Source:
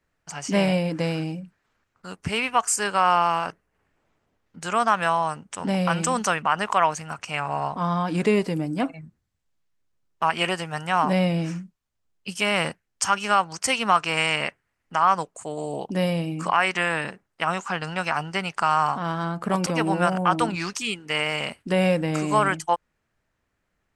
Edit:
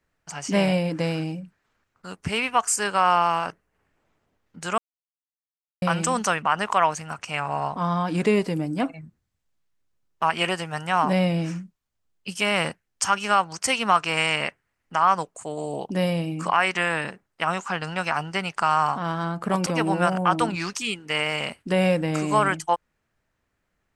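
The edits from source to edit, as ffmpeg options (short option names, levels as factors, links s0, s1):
-filter_complex "[0:a]asplit=3[s0][s1][s2];[s0]atrim=end=4.78,asetpts=PTS-STARTPTS,afade=t=out:st=4.776:d=0.004:c=hsin[s3];[s1]atrim=start=4.78:end=5.82,asetpts=PTS-STARTPTS,volume=0[s4];[s2]atrim=start=5.82,asetpts=PTS-STARTPTS,afade=t=in:d=0.004:c=hsin[s5];[s3][s4][s5]concat=n=3:v=0:a=1"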